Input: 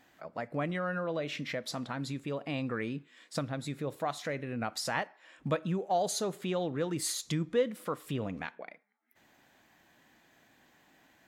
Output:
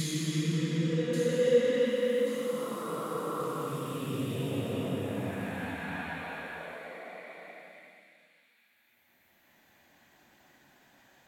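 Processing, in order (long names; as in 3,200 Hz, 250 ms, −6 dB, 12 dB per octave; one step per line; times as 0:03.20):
extreme stretch with random phases 5×, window 0.50 s, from 0:07.25
delay with a high-pass on its return 1,133 ms, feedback 38%, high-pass 4,400 Hz, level −6 dB
level +2.5 dB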